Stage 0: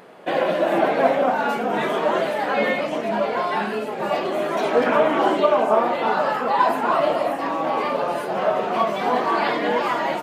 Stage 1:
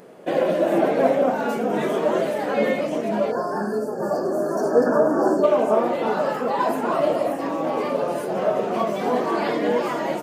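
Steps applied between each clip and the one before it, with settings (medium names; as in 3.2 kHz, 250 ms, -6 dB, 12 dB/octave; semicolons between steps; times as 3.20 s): time-frequency box 3.31–5.44 s, 1.8–4.3 kHz -29 dB; high-order bell 1.8 kHz -8 dB 2.9 oct; trim +2.5 dB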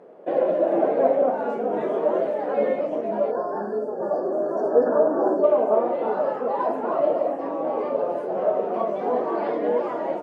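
band-pass filter 560 Hz, Q 1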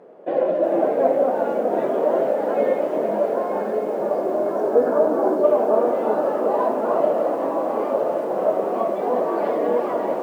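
echo that smears into a reverb 1010 ms, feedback 41%, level -7 dB; bit-crushed delay 365 ms, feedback 80%, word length 8-bit, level -12 dB; trim +1 dB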